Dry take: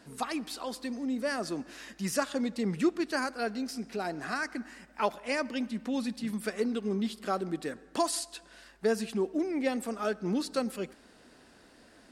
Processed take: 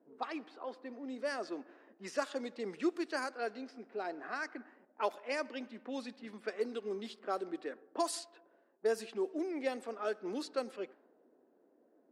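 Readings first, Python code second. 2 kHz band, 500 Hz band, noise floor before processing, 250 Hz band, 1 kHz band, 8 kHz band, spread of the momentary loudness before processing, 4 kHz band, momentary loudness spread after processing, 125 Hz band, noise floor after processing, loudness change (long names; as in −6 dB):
−6.0 dB, −4.0 dB, −58 dBFS, −10.0 dB, −5.5 dB, −9.5 dB, 7 LU, −8.0 dB, 10 LU, below −15 dB, −70 dBFS, −6.5 dB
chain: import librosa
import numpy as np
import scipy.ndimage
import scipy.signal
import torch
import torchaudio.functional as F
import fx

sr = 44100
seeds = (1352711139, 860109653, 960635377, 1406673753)

y = fx.env_lowpass(x, sr, base_hz=440.0, full_db=-25.5)
y = fx.ladder_highpass(y, sr, hz=280.0, resonance_pct=25)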